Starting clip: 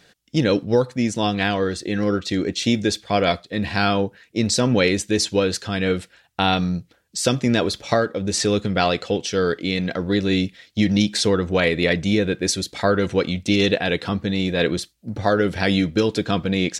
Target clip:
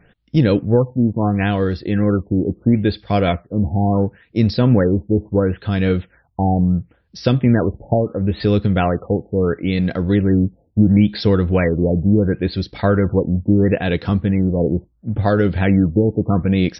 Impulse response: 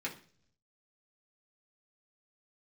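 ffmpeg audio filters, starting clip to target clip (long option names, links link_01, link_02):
-af "aemphasis=mode=reproduction:type=bsi,afftfilt=real='re*lt(b*sr/1024,880*pow(5900/880,0.5+0.5*sin(2*PI*0.73*pts/sr)))':imag='im*lt(b*sr/1024,880*pow(5900/880,0.5+0.5*sin(2*PI*0.73*pts/sr)))':win_size=1024:overlap=0.75"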